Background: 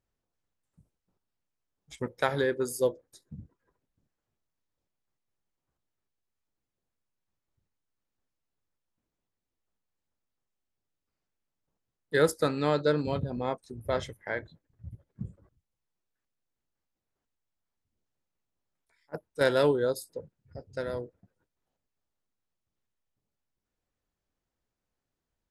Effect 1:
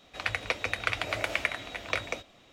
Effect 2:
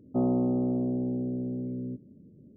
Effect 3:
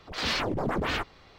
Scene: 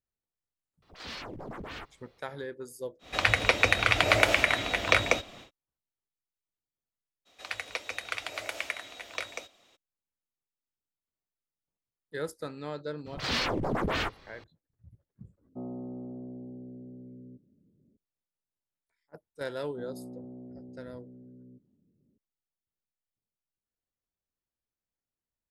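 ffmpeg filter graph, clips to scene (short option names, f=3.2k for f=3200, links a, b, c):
-filter_complex "[3:a]asplit=2[a][b];[1:a]asplit=2[c][d];[2:a]asplit=2[e][f];[0:a]volume=-11.5dB[g];[a]acrusher=bits=11:mix=0:aa=0.000001[h];[c]alimiter=level_in=13dB:limit=-1dB:release=50:level=0:latency=1[i];[d]bass=f=250:g=-11,treble=f=4k:g=7[j];[f]lowpass=1.1k[k];[h]atrim=end=1.38,asetpts=PTS-STARTPTS,volume=-12.5dB,afade=t=in:d=0.004:c=hsin,afade=t=out:st=1.376:d=0.004:c=hsin,adelay=820[l];[i]atrim=end=2.52,asetpts=PTS-STARTPTS,volume=-3.5dB,afade=t=in:d=0.1,afade=t=out:st=2.42:d=0.1,adelay=2990[m];[j]atrim=end=2.52,asetpts=PTS-STARTPTS,volume=-6dB,afade=t=in:d=0.02,afade=t=out:st=2.5:d=0.02,adelay=7250[n];[b]atrim=end=1.38,asetpts=PTS-STARTPTS,volume=-1dB,afade=t=in:d=0.004:c=hsin,afade=t=out:st=1.376:d=0.004:c=hsin,adelay=13060[o];[e]atrim=end=2.56,asetpts=PTS-STARTPTS,volume=-13.5dB,afade=t=in:d=0.004:c=hsin,afade=t=out:st=2.556:d=0.004:c=hsin,adelay=15410[p];[k]atrim=end=2.56,asetpts=PTS-STARTPTS,volume=-17.5dB,afade=t=in:d=0.004:c=hsin,afade=t=out:st=2.556:d=0.004:c=hsin,adelay=19620[q];[g][l][m][n][o][p][q]amix=inputs=7:normalize=0"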